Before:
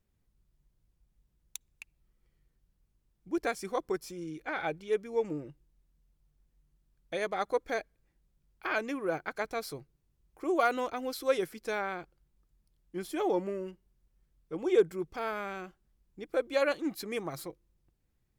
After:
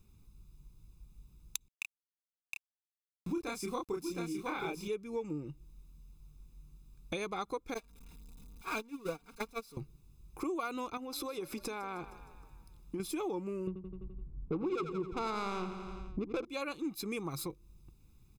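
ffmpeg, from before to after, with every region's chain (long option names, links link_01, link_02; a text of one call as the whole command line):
ffmpeg -i in.wav -filter_complex "[0:a]asettb=1/sr,asplit=3[link_01][link_02][link_03];[link_01]atrim=end=1.684[link_04];[link_02]atrim=start=1.68:end=4.88,asetpts=PTS-STARTPTS,afade=type=in:duration=0.004:curve=qsin,afade=type=out:start_time=3.196:duration=0.004:curve=qsin,aeval=exprs='val(0)*gte(abs(val(0)),0.00188)':channel_layout=same,asplit=2[link_05][link_06];[link_06]adelay=29,volume=-2dB[link_07];[link_05][link_07]amix=inputs=2:normalize=0,atrim=end_sample=141120,aecho=1:1:714:0.447,atrim=end_sample=141120[link_08];[link_03]atrim=start=4.876[link_09];[link_04][link_08]acrossfade=duration=0.004:curve1=hsin:curve2=qsin[link_10];[link_10][link_09]acrossfade=duration=0.004:curve1=qsin:curve2=hsin,asettb=1/sr,asplit=3[link_11][link_12][link_13];[link_11]atrim=end=7.744[link_14];[link_12]atrim=start=7.74:end=9.77,asetpts=PTS-STARTPTS,afade=type=in:duration=0.004:curve=qsin,afade=type=out:start_time=2.026:duration=0.004:curve=qsin,aeval=exprs='val(0)+0.5*0.0178*sgn(val(0))':channel_layout=same,agate=range=-28dB:threshold=-29dB:ratio=16:release=100:detection=peak,aecho=1:1:4.3:0.71,atrim=end_sample=89523[link_15];[link_13]atrim=start=9.766[link_16];[link_14][link_15]acrossfade=duration=0.004:curve1=hsin:curve2=qsin[link_17];[link_17][link_16]acrossfade=duration=0.004:curve1=qsin:curve2=hsin,asettb=1/sr,asplit=3[link_18][link_19][link_20];[link_18]atrim=end=10.974[link_21];[link_19]atrim=start=10.97:end=13,asetpts=PTS-STARTPTS,afade=type=in:duration=0.004:curve=qsin,afade=type=out:start_time=2.026:duration=0.004:curve=qsin,equalizer=frequency=790:width_type=o:width=2.5:gain=7,acompressor=threshold=-45dB:ratio=3:attack=3.2:release=140:knee=1:detection=peak,asplit=6[link_22][link_23][link_24][link_25][link_26][link_27];[link_23]adelay=155,afreqshift=33,volume=-17dB[link_28];[link_24]adelay=310,afreqshift=66,volume=-22.4dB[link_29];[link_25]adelay=465,afreqshift=99,volume=-27.7dB[link_30];[link_26]adelay=620,afreqshift=132,volume=-33.1dB[link_31];[link_27]adelay=775,afreqshift=165,volume=-38.4dB[link_32];[link_22][link_28][link_29][link_30][link_31][link_32]amix=inputs=6:normalize=0,atrim=end_sample=89523[link_33];[link_20]atrim=start=12.996[link_34];[link_21][link_33]acrossfade=duration=0.004:curve1=hsin:curve2=qsin[link_35];[link_35][link_34]acrossfade=duration=0.004:curve1=qsin:curve2=hsin,asettb=1/sr,asplit=3[link_36][link_37][link_38];[link_36]atrim=end=13.674[link_39];[link_37]atrim=start=13.67:end=16.45,asetpts=PTS-STARTPTS,afade=type=in:duration=0.004:curve=qsin,afade=type=out:start_time=2.776:duration=0.004:curve=qsin,adynamicsmooth=sensitivity=5.5:basefreq=560,aeval=exprs='0.188*sin(PI/2*2.24*val(0)/0.188)':channel_layout=same,aecho=1:1:85|170|255|340|425|510:0.299|0.164|0.0903|0.0497|0.0273|0.015,atrim=end_sample=122598[link_40];[link_38]atrim=start=16.446[link_41];[link_39][link_40]acrossfade=duration=0.004:curve1=hsin:curve2=qsin[link_42];[link_42][link_41]acrossfade=duration=0.004:curve1=qsin:curve2=hsin,equalizer=frequency=1600:width=2.8:gain=-10.5,aecho=1:1:0.8:0.7,acompressor=threshold=-47dB:ratio=5,volume=10.5dB" out.wav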